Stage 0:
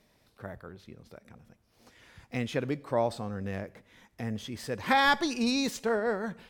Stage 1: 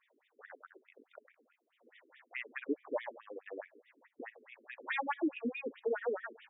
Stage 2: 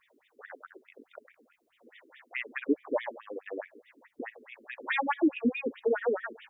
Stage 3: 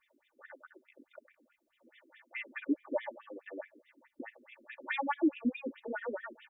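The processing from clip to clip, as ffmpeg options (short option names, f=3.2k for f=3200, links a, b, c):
-filter_complex "[0:a]acrossover=split=260|1400[a][b][c];[b]asoftclip=type=tanh:threshold=-28dB[d];[c]alimiter=level_in=2.5dB:limit=-24dB:level=0:latency=1:release=404,volume=-2.5dB[e];[a][d][e]amix=inputs=3:normalize=0,afftfilt=real='re*between(b*sr/1024,320*pow(2700/320,0.5+0.5*sin(2*PI*4.7*pts/sr))/1.41,320*pow(2700/320,0.5+0.5*sin(2*PI*4.7*pts/sr))*1.41)':imag='im*between(b*sr/1024,320*pow(2700/320,0.5+0.5*sin(2*PI*4.7*pts/sr))/1.41,320*pow(2700/320,0.5+0.5*sin(2*PI*4.7*pts/sr))*1.41)':win_size=1024:overlap=0.75,volume=1dB"
-af "bass=f=250:g=8,treble=f=4k:g=3,volume=6dB"
-af "aecho=1:1:3.4:0.84,volume=-8dB"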